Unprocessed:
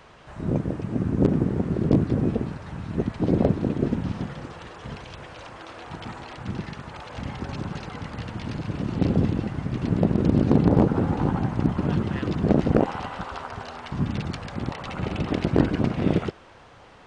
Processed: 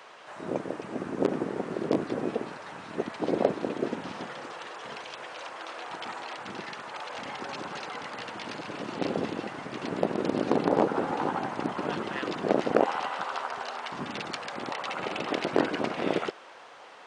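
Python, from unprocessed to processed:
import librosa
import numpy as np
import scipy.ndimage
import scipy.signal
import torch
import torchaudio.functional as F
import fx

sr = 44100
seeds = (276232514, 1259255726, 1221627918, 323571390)

y = scipy.signal.sosfilt(scipy.signal.butter(2, 480.0, 'highpass', fs=sr, output='sos'), x)
y = y * librosa.db_to_amplitude(2.5)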